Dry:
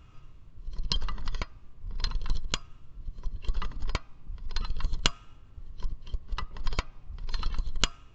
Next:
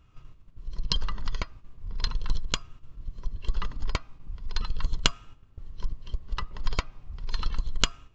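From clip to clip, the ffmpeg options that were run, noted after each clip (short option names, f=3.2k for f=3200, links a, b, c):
-af "agate=range=-8dB:threshold=-45dB:ratio=16:detection=peak,volume=2dB"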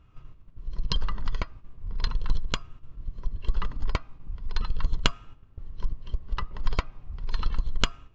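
-af "highshelf=f=4.3k:g=-12,volume=2dB"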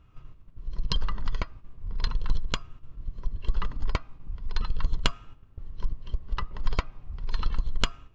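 -af "asoftclip=type=tanh:threshold=-5dB"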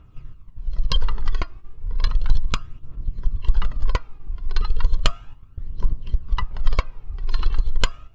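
-af "aphaser=in_gain=1:out_gain=1:delay=2.9:decay=0.49:speed=0.34:type=triangular,volume=3dB"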